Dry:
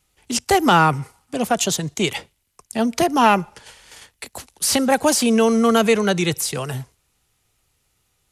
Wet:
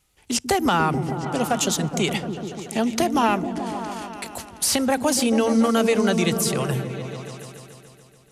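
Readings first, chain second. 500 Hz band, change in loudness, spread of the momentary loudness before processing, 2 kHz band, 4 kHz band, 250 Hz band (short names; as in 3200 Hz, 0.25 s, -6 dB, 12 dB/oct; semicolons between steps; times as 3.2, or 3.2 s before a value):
-3.0 dB, -3.5 dB, 17 LU, -4.5 dB, -3.0 dB, -1.5 dB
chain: compressor 2.5:1, threshold -19 dBFS, peak gain reduction 7 dB; on a send: repeats that get brighter 0.144 s, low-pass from 200 Hz, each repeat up 1 oct, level -3 dB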